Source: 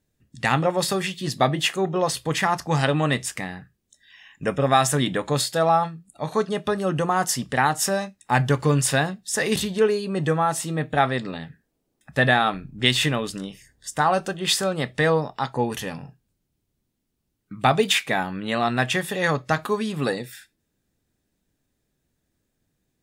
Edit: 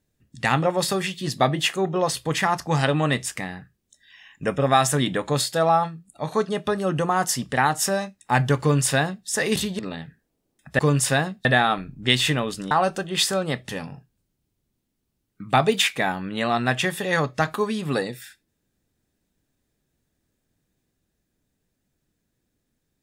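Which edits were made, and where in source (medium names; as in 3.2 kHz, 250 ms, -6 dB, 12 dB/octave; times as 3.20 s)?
8.61–9.27 s: copy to 12.21 s
9.79–11.21 s: delete
13.47–14.01 s: delete
14.99–15.80 s: delete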